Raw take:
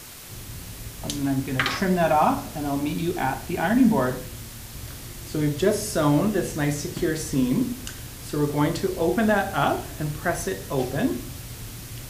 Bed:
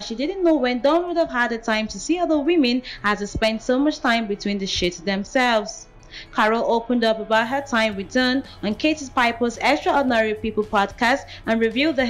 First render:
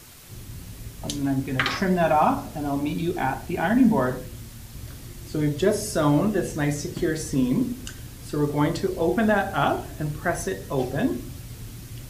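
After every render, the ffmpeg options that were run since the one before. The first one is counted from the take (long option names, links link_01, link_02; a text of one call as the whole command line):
ffmpeg -i in.wav -af "afftdn=noise_reduction=6:noise_floor=-40" out.wav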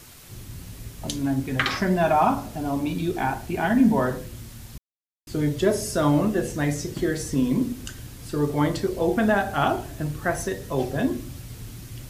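ffmpeg -i in.wav -filter_complex "[0:a]asplit=3[link_01][link_02][link_03];[link_01]atrim=end=4.78,asetpts=PTS-STARTPTS,afade=type=out:start_time=4.776:duration=0.004:curve=hsin[link_04];[link_02]atrim=start=4.78:end=5.27,asetpts=PTS-STARTPTS,volume=0[link_05];[link_03]atrim=start=5.27,asetpts=PTS-STARTPTS,afade=type=in:duration=0.004:curve=hsin[link_06];[link_04][link_05][link_06]concat=n=3:v=0:a=1" out.wav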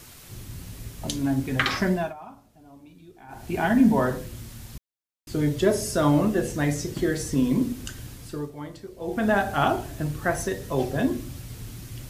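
ffmpeg -i in.wav -filter_complex "[0:a]asplit=5[link_01][link_02][link_03][link_04][link_05];[link_01]atrim=end=2.14,asetpts=PTS-STARTPTS,afade=type=out:start_time=1.87:duration=0.27:silence=0.0707946[link_06];[link_02]atrim=start=2.14:end=3.28,asetpts=PTS-STARTPTS,volume=-23dB[link_07];[link_03]atrim=start=3.28:end=8.51,asetpts=PTS-STARTPTS,afade=type=in:duration=0.27:silence=0.0707946,afade=type=out:start_time=4.84:duration=0.39:silence=0.177828[link_08];[link_04]atrim=start=8.51:end=8.98,asetpts=PTS-STARTPTS,volume=-15dB[link_09];[link_05]atrim=start=8.98,asetpts=PTS-STARTPTS,afade=type=in:duration=0.39:silence=0.177828[link_10];[link_06][link_07][link_08][link_09][link_10]concat=n=5:v=0:a=1" out.wav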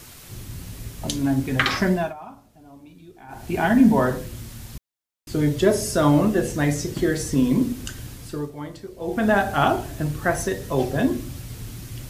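ffmpeg -i in.wav -af "volume=3dB" out.wav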